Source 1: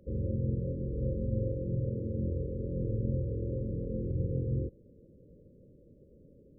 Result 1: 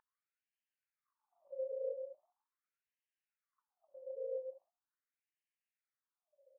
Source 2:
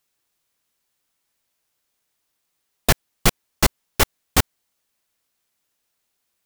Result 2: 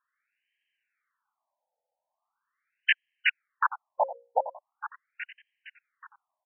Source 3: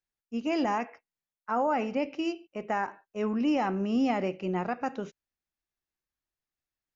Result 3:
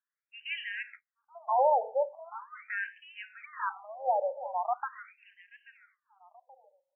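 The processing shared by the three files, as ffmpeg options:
ffmpeg -i in.wav -filter_complex "[0:a]bandreject=frequency=60:width_type=h:width=6,bandreject=frequency=120:width_type=h:width=6,bandreject=frequency=180:width_type=h:width=6,bandreject=frequency=240:width_type=h:width=6,bandreject=frequency=300:width_type=h:width=6,bandreject=frequency=360:width_type=h:width=6,bandreject=frequency=420:width_type=h:width=6,bandreject=frequency=480:width_type=h:width=6,bandreject=frequency=540:width_type=h:width=6,aecho=1:1:831|1662|2493:0.178|0.048|0.013,asplit=2[link_01][link_02];[link_02]asoftclip=type=tanh:threshold=-13.5dB,volume=-4dB[link_03];[link_01][link_03]amix=inputs=2:normalize=0,afftfilt=real='re*between(b*sr/1024,650*pow(2300/650,0.5+0.5*sin(2*PI*0.41*pts/sr))/1.41,650*pow(2300/650,0.5+0.5*sin(2*PI*0.41*pts/sr))*1.41)':imag='im*between(b*sr/1024,650*pow(2300/650,0.5+0.5*sin(2*PI*0.41*pts/sr))/1.41,650*pow(2300/650,0.5+0.5*sin(2*PI*0.41*pts/sr))*1.41)':win_size=1024:overlap=0.75" out.wav

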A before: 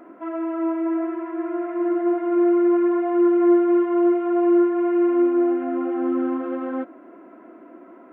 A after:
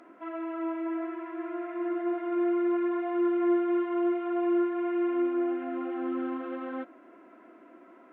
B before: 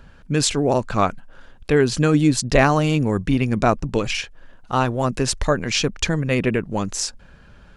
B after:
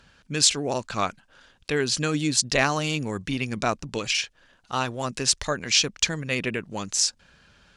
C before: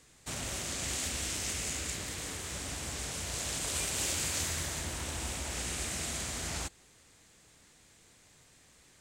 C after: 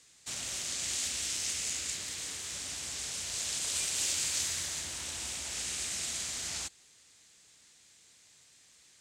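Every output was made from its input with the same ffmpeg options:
ffmpeg -i in.wav -af "highpass=frequency=71:poles=1,equalizer=frequency=5300:width_type=o:width=2.9:gain=13,volume=-9.5dB" out.wav

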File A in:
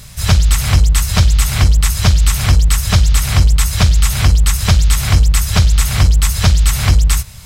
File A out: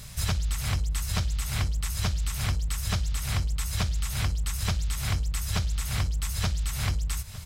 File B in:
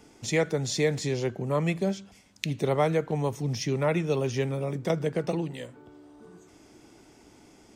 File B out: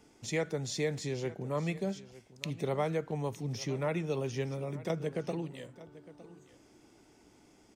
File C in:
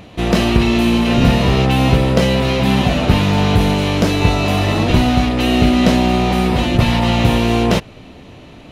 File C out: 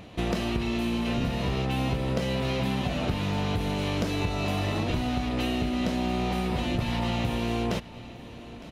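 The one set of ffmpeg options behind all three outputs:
ffmpeg -i in.wav -filter_complex "[0:a]acompressor=threshold=-17dB:ratio=10,asplit=2[link_01][link_02];[link_02]aecho=0:1:909:0.126[link_03];[link_01][link_03]amix=inputs=2:normalize=0,volume=-7dB" out.wav

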